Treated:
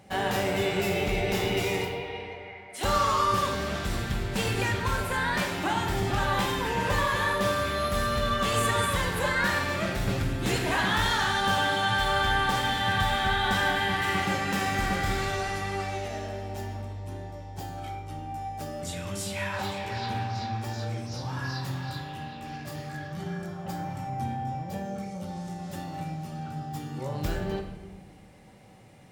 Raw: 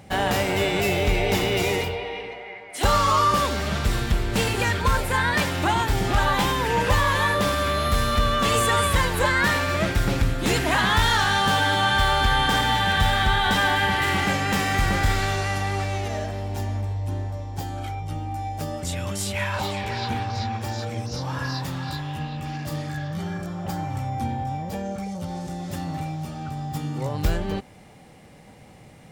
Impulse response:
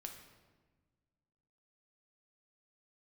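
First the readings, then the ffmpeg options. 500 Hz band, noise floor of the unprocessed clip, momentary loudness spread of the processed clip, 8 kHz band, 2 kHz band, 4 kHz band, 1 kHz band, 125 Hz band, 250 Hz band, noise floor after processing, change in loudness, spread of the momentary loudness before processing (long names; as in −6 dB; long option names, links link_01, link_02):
−4.0 dB, −47 dBFS, 13 LU, −5.5 dB, −4.5 dB, −5.5 dB, −4.5 dB, −6.0 dB, −4.5 dB, −44 dBFS, −5.0 dB, 12 LU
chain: -filter_complex "[0:a]lowshelf=frequency=71:gain=-7.5[link_01];[1:a]atrim=start_sample=2205,asetrate=48510,aresample=44100[link_02];[link_01][link_02]afir=irnorm=-1:irlink=0"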